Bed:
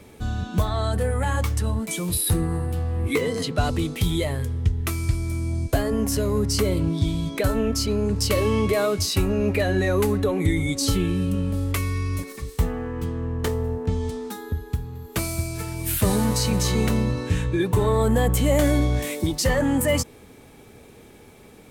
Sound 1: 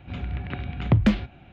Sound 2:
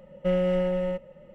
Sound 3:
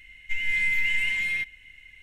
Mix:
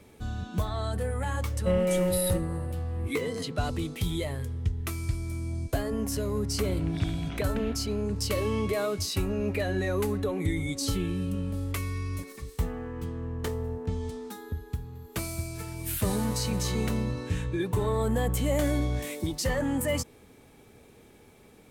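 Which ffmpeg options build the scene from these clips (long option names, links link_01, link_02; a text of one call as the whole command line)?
ffmpeg -i bed.wav -i cue0.wav -i cue1.wav -filter_complex "[0:a]volume=-7dB[link_01];[1:a]acompressor=threshold=-32dB:ratio=6:attack=3.2:release=140:knee=1:detection=peak[link_02];[2:a]atrim=end=1.34,asetpts=PTS-STARTPTS,volume=-1.5dB,afade=type=in:duration=0.004:curve=hsin,afade=type=out:start_time=1.336:duration=0.004:curve=hsin,adelay=1410[link_03];[link_02]atrim=end=1.52,asetpts=PTS-STARTPTS,volume=-1.5dB,afade=type=in:duration=0.004:curve=hsin,afade=type=out:start_time=1.516:duration=0.004:curve=hsin,adelay=286650S[link_04];[link_01][link_03][link_04]amix=inputs=3:normalize=0" out.wav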